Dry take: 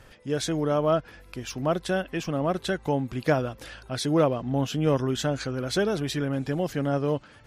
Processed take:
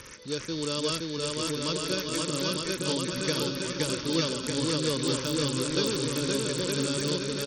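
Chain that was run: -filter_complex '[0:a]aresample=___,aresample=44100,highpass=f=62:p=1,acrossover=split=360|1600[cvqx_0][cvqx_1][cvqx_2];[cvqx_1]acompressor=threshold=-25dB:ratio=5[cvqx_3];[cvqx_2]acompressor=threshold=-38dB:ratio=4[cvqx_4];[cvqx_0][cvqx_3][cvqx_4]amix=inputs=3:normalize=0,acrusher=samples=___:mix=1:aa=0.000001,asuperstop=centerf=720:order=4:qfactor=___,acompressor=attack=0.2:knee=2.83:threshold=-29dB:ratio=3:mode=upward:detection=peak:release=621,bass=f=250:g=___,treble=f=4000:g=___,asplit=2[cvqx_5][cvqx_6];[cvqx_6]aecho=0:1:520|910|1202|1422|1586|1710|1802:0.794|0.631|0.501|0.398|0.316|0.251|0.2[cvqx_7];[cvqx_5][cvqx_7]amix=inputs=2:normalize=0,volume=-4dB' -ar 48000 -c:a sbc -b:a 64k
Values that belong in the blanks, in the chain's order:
16000, 11, 2, -4, 15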